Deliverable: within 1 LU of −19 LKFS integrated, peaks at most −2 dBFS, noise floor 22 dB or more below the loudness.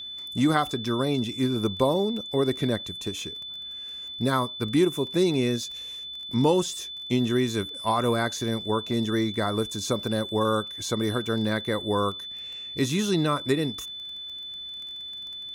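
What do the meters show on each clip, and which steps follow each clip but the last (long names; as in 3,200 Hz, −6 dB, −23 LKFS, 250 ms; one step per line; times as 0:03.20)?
crackle rate 19 per second; interfering tone 3,500 Hz; level of the tone −35 dBFS; integrated loudness −27.0 LKFS; sample peak −8.0 dBFS; target loudness −19.0 LKFS
→ click removal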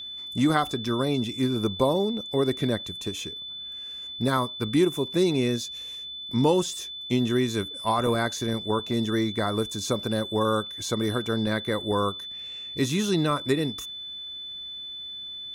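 crackle rate 0.64 per second; interfering tone 3,500 Hz; level of the tone −35 dBFS
→ notch filter 3,500 Hz, Q 30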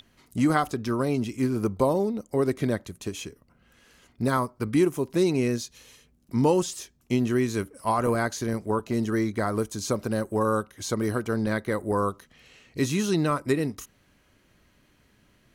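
interfering tone none found; integrated loudness −26.5 LKFS; sample peak −8.5 dBFS; target loudness −19.0 LKFS
→ level +7.5 dB
brickwall limiter −2 dBFS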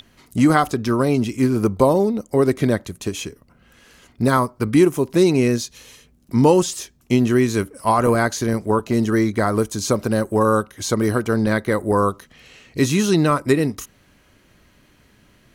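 integrated loudness −19.0 LKFS; sample peak −2.0 dBFS; background noise floor −56 dBFS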